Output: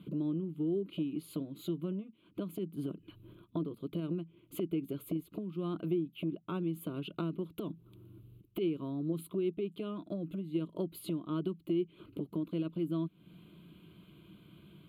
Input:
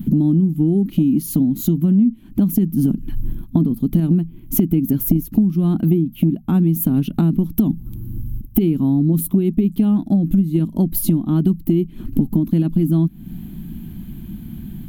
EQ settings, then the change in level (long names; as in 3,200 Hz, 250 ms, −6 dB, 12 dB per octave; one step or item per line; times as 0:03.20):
band-pass filter 280–5,000 Hz
phaser with its sweep stopped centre 1,200 Hz, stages 8
−6.0 dB